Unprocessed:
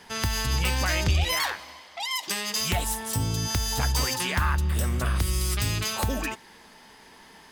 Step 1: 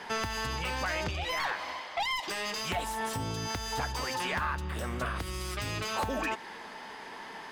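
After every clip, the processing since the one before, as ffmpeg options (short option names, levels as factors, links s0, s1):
-filter_complex "[0:a]acompressor=threshold=0.0282:ratio=6,asplit=2[s0][s1];[s1]highpass=f=720:p=1,volume=7.94,asoftclip=type=tanh:threshold=0.141[s2];[s0][s2]amix=inputs=2:normalize=0,lowpass=f=1300:p=1,volume=0.501"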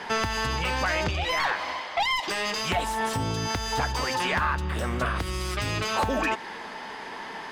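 -af "highshelf=f=10000:g=-8.5,volume=2.11"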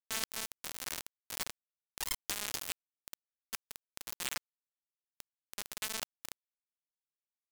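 -af "aderivative,acrusher=bits=4:mix=0:aa=0.000001,volume=1.78"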